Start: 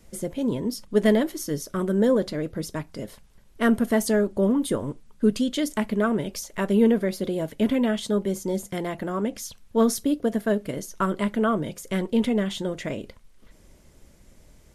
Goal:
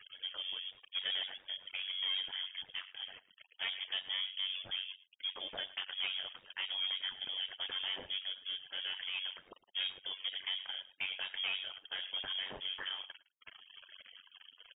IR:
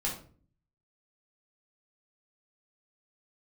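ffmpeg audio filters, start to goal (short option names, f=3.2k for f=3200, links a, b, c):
-filter_complex "[0:a]aeval=exprs='val(0)+0.5*0.02*sgn(val(0))':c=same,highpass=f=460:w=0.5412,highpass=f=460:w=1.3066,afftfilt=real='re*gte(hypot(re,im),0.00794)':imag='im*gte(hypot(re,im),0.00794)':win_size=1024:overlap=0.75,asplit=2[a][b];[b]adelay=110,highpass=300,lowpass=3.4k,asoftclip=type=hard:threshold=-20dB,volume=-18dB[c];[a][c]amix=inputs=2:normalize=0,asoftclip=type=tanh:threshold=-27dB,lowpass=f=3.1k:t=q:w=0.5098,lowpass=f=3.1k:t=q:w=0.6013,lowpass=f=3.1k:t=q:w=0.9,lowpass=f=3.1k:t=q:w=2.563,afreqshift=-3700,tremolo=f=94:d=0.75,volume=-3dB"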